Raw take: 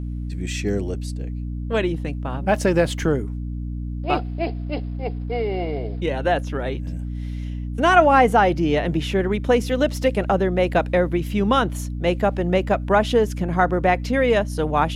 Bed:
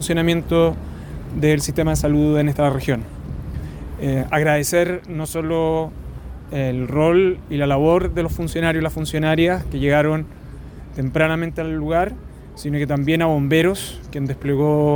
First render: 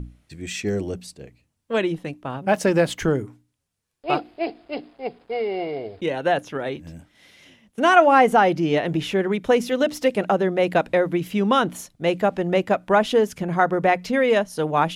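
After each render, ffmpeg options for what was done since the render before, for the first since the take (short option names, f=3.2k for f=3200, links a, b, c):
-af "bandreject=f=60:t=h:w=6,bandreject=f=120:t=h:w=6,bandreject=f=180:t=h:w=6,bandreject=f=240:t=h:w=6,bandreject=f=300:t=h:w=6"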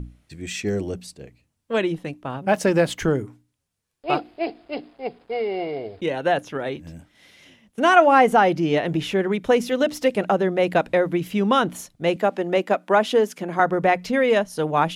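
-filter_complex "[0:a]asettb=1/sr,asplit=3[a][b][c];[a]atrim=end=12.164[d];[b]atrim=start=12.16:end=13.6,asetpts=PTS-STARTPTS,afade=t=in:d=0.004:c=qsin,afade=t=out:st=1.436:d=0.004:c=qsin,highpass=f=210:w=0.5412,highpass=f=210:w=1.3066[e];[c]atrim=start=13.596[f];[d][e]acrossfade=d=0.004:c1=hsin:c2=qsin[g];[g][f]acrossfade=d=0.004:c1=qsin:c2=hsin"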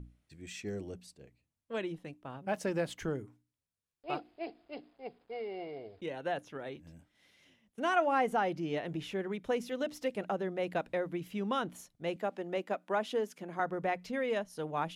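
-af "volume=-14.5dB"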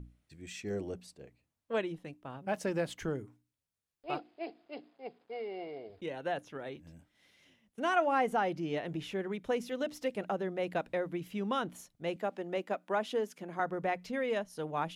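-filter_complex "[0:a]asettb=1/sr,asplit=3[a][b][c];[a]atrim=end=0.704[d];[b]atrim=start=0.7:end=1.81,asetpts=PTS-STARTPTS,afade=t=in:d=0.004:c=qsin,afade=t=out:st=1.106:d=0.004:c=qsin,equalizer=f=760:w=0.39:g=5.5[e];[c]atrim=start=1.806[f];[d][e]acrossfade=d=0.004:c1=hsin:c2=qsin[g];[g][f]acrossfade=d=0.004:c1=qsin:c2=hsin,asettb=1/sr,asplit=3[h][i][j];[h]atrim=end=4.184[k];[i]atrim=start=4.18:end=5.9,asetpts=PTS-STARTPTS,afade=t=in:d=0.004:c=qsin,afade=t=out:st=1.716:d=0.004:c=qsin,highpass=160,lowpass=7.8k[l];[j]atrim=start=5.896[m];[k][l]acrossfade=d=0.004:c1=hsin:c2=qsin[n];[n][m]acrossfade=d=0.004:c1=qsin:c2=hsin"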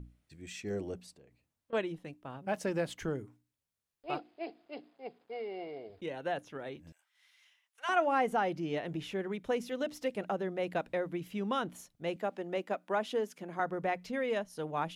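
-filter_complex "[0:a]asettb=1/sr,asplit=3[a][b][c];[a]atrim=end=1.124[d];[b]atrim=start=1.12:end=1.73,asetpts=PTS-STARTPTS,afade=t=in:d=0.004:c=qsin,afade=t=out:st=0.606:d=0.004:c=qsin,acompressor=threshold=-56dB:ratio=5:attack=3.2:release=140:knee=1:detection=peak[e];[c]atrim=start=1.726[f];[d][e]acrossfade=d=0.004:c1=hsin:c2=qsin[g];[g][f]acrossfade=d=0.004:c1=qsin:c2=hsin,asettb=1/sr,asplit=3[h][i][j];[h]atrim=end=6.924[k];[i]atrim=start=6.92:end=7.89,asetpts=PTS-STARTPTS,afade=t=in:d=0.004:c=qsin,afade=t=out:st=0.966:d=0.004:c=qsin,highpass=f=980:w=0.5412,highpass=f=980:w=1.3066[l];[j]atrim=start=7.886[m];[k][l]acrossfade=d=0.004:c1=hsin:c2=qsin[n];[n][m]acrossfade=d=0.004:c1=qsin:c2=hsin"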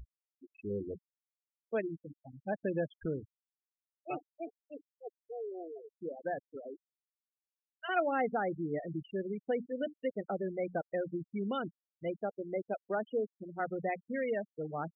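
-af "afftfilt=real='re*gte(hypot(re,im),0.0355)':imag='im*gte(hypot(re,im),0.0355)':win_size=1024:overlap=0.75,equalizer=f=1k:t=o:w=0.35:g=-14.5"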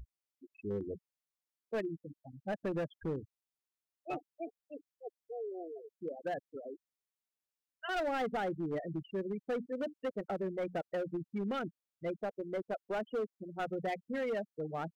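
-af "volume=31dB,asoftclip=hard,volume=-31dB"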